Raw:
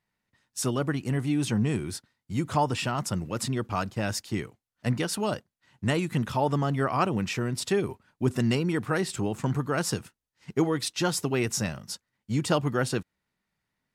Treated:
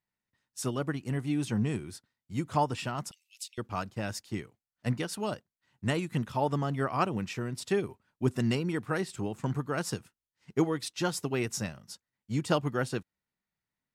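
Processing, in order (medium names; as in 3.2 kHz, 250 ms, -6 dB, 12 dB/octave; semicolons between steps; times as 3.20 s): 3.11–3.58 s: steep high-pass 2.5 kHz 48 dB/octave; upward expansion 1.5:1, over -36 dBFS; trim -1.5 dB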